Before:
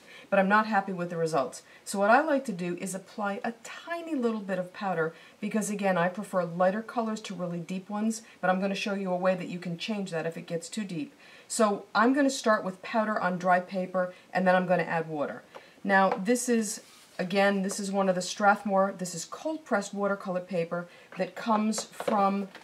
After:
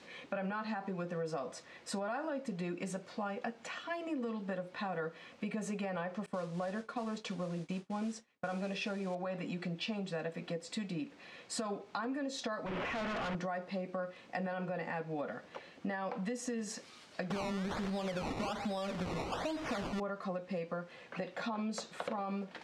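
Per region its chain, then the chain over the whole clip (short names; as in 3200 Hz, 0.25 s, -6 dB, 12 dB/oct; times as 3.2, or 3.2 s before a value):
6.26–9.15 expander -39 dBFS + modulation noise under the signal 20 dB + careless resampling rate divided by 2×, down none, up filtered
12.66–13.35 delta modulation 16 kbps, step -28.5 dBFS + overloaded stage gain 34 dB
17.3–20 zero-crossing step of -32 dBFS + decimation with a swept rate 19× 1.2 Hz
whole clip: LPF 5600 Hz 12 dB/oct; limiter -21.5 dBFS; compressor, threshold -34 dBFS; gain -1 dB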